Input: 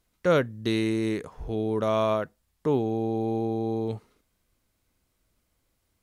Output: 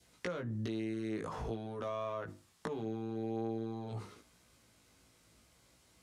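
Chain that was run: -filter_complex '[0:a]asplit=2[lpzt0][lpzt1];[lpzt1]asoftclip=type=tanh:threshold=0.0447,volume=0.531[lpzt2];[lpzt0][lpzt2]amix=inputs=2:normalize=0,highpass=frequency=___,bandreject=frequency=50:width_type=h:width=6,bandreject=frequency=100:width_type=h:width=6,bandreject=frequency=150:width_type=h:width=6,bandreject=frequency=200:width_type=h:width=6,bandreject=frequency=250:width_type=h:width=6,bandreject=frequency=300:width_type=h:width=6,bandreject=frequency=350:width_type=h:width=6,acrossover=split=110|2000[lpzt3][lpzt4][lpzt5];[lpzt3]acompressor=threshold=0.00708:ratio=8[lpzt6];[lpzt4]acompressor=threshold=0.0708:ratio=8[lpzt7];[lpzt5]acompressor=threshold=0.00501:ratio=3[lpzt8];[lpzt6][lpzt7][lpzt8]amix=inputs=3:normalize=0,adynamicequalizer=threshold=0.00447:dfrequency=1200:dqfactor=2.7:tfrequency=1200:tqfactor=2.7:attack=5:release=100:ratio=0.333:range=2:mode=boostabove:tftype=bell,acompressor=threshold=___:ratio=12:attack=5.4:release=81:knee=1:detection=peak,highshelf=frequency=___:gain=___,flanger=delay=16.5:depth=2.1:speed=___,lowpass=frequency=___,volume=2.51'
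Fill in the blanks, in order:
71, 0.00794, 4.6k, 5.5, 0.5, 8.5k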